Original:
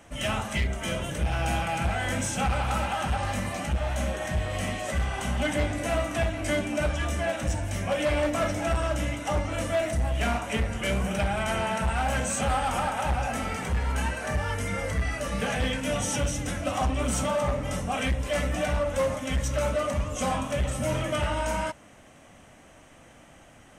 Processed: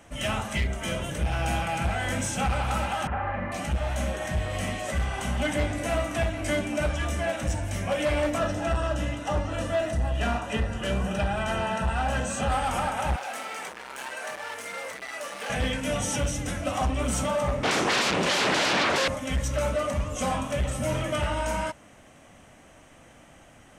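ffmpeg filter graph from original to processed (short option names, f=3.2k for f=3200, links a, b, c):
-filter_complex "[0:a]asettb=1/sr,asplit=3[a][b][c];[a]atrim=end=3.074[d];[b]atrim=start=3.07:end=3.52,asetpts=PTS-STARTPTS,afade=t=in:d=0.004:c=qsin,afade=t=out:st=0.446:d=0.004:c=qsin,lowpass=f=2k:w=0.5412,lowpass=f=2k:w=1.3066,lowshelf=f=340:g=-6.5,asplit=2[e][f];[f]adelay=43,volume=-2.5dB[g];[e][g]amix=inputs=2:normalize=0,atrim=end_sample=19845[h];[c]atrim=start=3.516[i];[d][h]acrossfade=d=0.004:c1=hsin:c2=qsin[j];[j][i]acrossfade=d=0.004:c1=qsin:c2=hsin,asettb=1/sr,asplit=3[k][l][m];[k]atrim=end=8.384[n];[l]atrim=start=8.38:end=12.52,asetpts=PTS-STARTPTS,afade=t=in:d=0.004:c=qsin,afade=t=out:st=4.136:d=0.004:c=qsin,asuperstop=centerf=2200:order=12:qfactor=7.9,highshelf=f=9.2k:g=-11.5[o];[m]atrim=start=12.516[p];[n][o]acrossfade=d=0.004:c1=hsin:c2=qsin[q];[q][p]acrossfade=d=0.004:c1=qsin:c2=hsin,asettb=1/sr,asplit=3[r][s][t];[r]atrim=end=13.164[u];[s]atrim=start=13.16:end=15.5,asetpts=PTS-STARTPTS,afade=t=in:d=0.004:c=qsin,afade=t=out:st=2.336:d=0.004:c=qsin,asoftclip=type=hard:threshold=-29dB,highpass=510[v];[t]atrim=start=15.496[w];[u][v]acrossfade=d=0.004:c1=hsin:c2=qsin[x];[x][w]acrossfade=d=0.004:c1=qsin:c2=hsin,asettb=1/sr,asplit=3[y][z][aa];[y]atrim=end=17.634[ab];[z]atrim=start=17.63:end=19.08,asetpts=PTS-STARTPTS,afade=t=in:d=0.004:c=qsin,afade=t=out:st=1.446:d=0.004:c=qsin,equalizer=f=480:t=o:w=2.3:g=-3,aeval=exprs='0.106*sin(PI/2*5.62*val(0)/0.106)':c=same,highpass=180,lowpass=5.4k[ac];[aa]atrim=start=19.076[ad];[ab][ac]acrossfade=d=0.004:c1=hsin:c2=qsin[ae];[ae][ad]acrossfade=d=0.004:c1=qsin:c2=hsin"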